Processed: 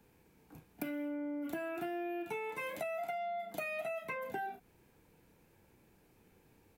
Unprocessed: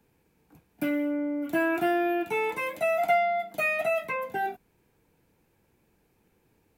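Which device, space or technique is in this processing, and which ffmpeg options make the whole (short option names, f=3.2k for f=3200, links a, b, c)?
serial compression, peaks first: -filter_complex "[0:a]asplit=2[a][b];[b]adelay=32,volume=-8dB[c];[a][c]amix=inputs=2:normalize=0,acompressor=threshold=-32dB:ratio=6,acompressor=threshold=-40dB:ratio=2.5,volume=1dB"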